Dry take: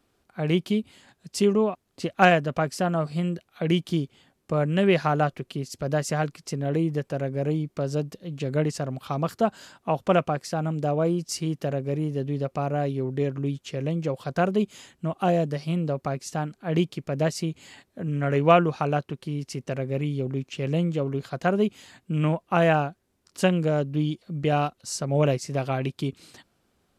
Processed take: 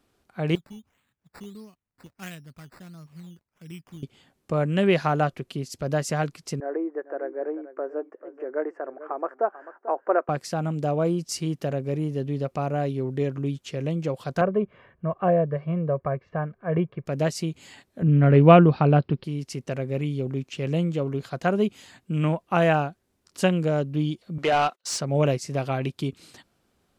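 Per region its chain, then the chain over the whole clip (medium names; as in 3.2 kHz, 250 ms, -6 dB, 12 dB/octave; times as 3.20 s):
0.55–4.03 s: amplifier tone stack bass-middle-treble 6-0-2 + decimation with a swept rate 11×, swing 60% 1.5 Hz
6.60–10.29 s: elliptic band-pass 340–1700 Hz + delay 441 ms -14.5 dB
14.41–17.06 s: low-pass 1.9 kHz 24 dB/octave + comb 1.8 ms, depth 61%
18.02–19.24 s: steep low-pass 5.2 kHz 96 dB/octave + bass shelf 400 Hz +11 dB
24.38–25.01 s: high-pass 480 Hz 6 dB/octave + gate -53 dBFS, range -29 dB + overdrive pedal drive 19 dB, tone 2.8 kHz, clips at -12.5 dBFS
whole clip: none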